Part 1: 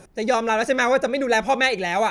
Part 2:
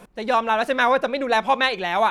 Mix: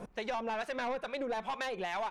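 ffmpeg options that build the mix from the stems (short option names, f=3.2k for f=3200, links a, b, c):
-filter_complex "[0:a]asplit=2[a][b];[b]adelay=3.2,afreqshift=-2.3[c];[a][c]amix=inputs=2:normalize=1,volume=-11.5dB[d];[1:a]highshelf=f=6.3k:g=-11.5,acrossover=split=970[e][f];[e]aeval=exprs='val(0)*(1-0.7/2+0.7/2*cos(2*PI*2.3*n/s))':c=same[g];[f]aeval=exprs='val(0)*(1-0.7/2-0.7/2*cos(2*PI*2.3*n/s))':c=same[h];[g][h]amix=inputs=2:normalize=0,aeval=exprs='(tanh(12.6*val(0)+0.15)-tanh(0.15))/12.6':c=same,volume=-1,volume=3dB[i];[d][i]amix=inputs=2:normalize=0,acompressor=threshold=-34dB:ratio=6"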